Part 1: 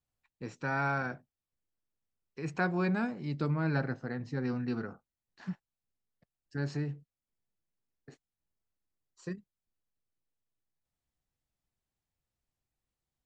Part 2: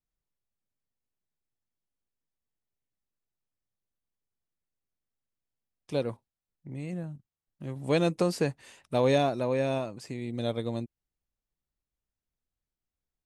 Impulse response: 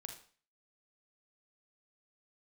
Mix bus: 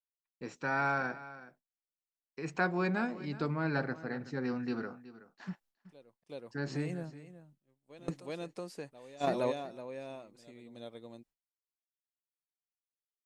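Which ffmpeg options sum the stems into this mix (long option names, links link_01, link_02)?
-filter_complex "[0:a]volume=1dB,asplit=3[link_01][link_02][link_03];[link_02]volume=-16.5dB[link_04];[1:a]volume=-0.5dB,asplit=2[link_05][link_06];[link_06]volume=-14dB[link_07];[link_03]apad=whole_len=584509[link_08];[link_05][link_08]sidechaingate=range=-27dB:threshold=-56dB:ratio=16:detection=peak[link_09];[link_04][link_07]amix=inputs=2:normalize=0,aecho=0:1:373:1[link_10];[link_01][link_09][link_10]amix=inputs=3:normalize=0,agate=range=-33dB:threshold=-56dB:ratio=3:detection=peak,equalizer=frequency=81:width=0.91:gain=-14.5"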